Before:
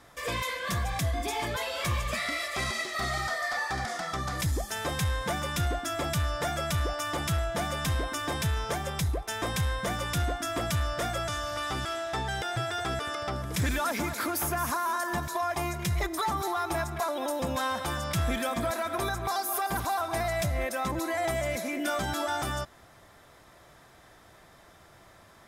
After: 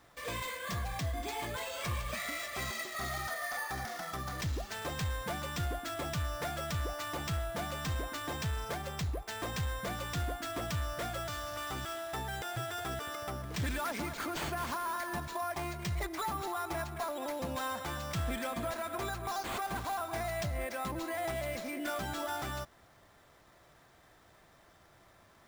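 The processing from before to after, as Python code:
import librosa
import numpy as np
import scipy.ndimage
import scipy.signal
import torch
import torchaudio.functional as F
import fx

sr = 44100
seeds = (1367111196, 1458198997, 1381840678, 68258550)

y = np.repeat(x[::4], 4)[:len(x)]
y = F.gain(torch.from_numpy(y), -6.5).numpy()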